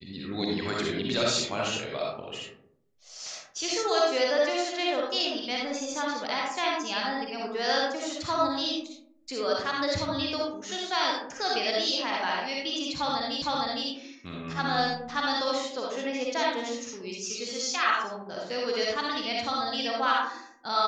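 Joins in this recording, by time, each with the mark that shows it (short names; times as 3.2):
13.42 repeat of the last 0.46 s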